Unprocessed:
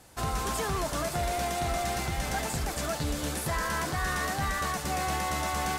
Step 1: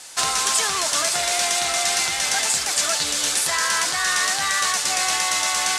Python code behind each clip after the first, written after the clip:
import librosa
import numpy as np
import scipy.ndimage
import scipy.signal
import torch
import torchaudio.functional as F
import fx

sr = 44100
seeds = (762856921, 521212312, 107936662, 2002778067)

y = fx.weighting(x, sr, curve='ITU-R 468')
y = fx.rider(y, sr, range_db=10, speed_s=0.5)
y = F.gain(torch.from_numpy(y), 6.0).numpy()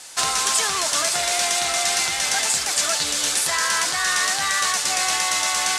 y = x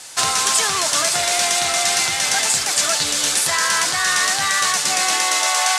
y = fx.filter_sweep_highpass(x, sr, from_hz=96.0, to_hz=660.0, start_s=4.65, end_s=5.65, q=1.6)
y = F.gain(torch.from_numpy(y), 3.0).numpy()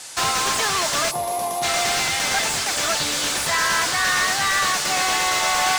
y = fx.spec_box(x, sr, start_s=1.11, length_s=0.52, low_hz=1200.0, high_hz=9700.0, gain_db=-18)
y = fx.slew_limit(y, sr, full_power_hz=420.0)